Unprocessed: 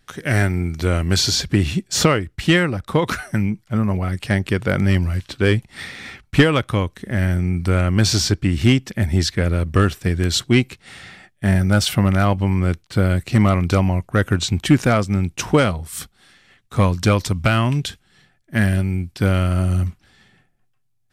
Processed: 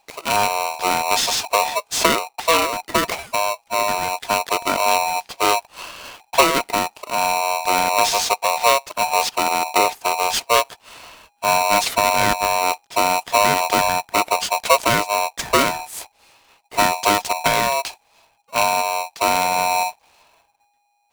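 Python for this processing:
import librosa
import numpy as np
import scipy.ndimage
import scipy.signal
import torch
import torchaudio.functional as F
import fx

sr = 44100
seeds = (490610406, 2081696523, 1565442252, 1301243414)

y = x * np.sign(np.sin(2.0 * np.pi * 820.0 * np.arange(len(x)) / sr))
y = F.gain(torch.from_numpy(y), -1.5).numpy()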